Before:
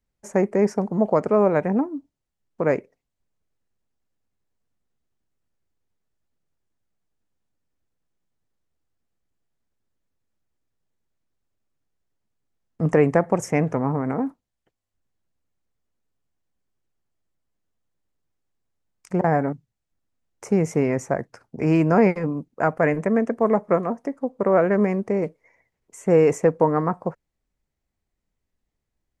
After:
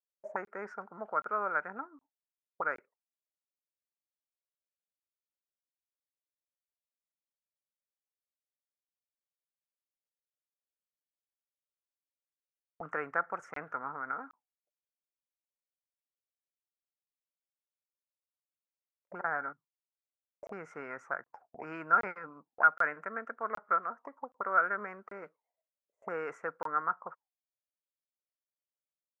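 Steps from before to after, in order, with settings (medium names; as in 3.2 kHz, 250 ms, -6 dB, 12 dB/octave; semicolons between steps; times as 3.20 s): auto-wah 560–1400 Hz, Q 13, up, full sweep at -21 dBFS; gate with hold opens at -60 dBFS; crackling interface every 0.77 s, samples 1024, zero, from 0.45 s; trim +8.5 dB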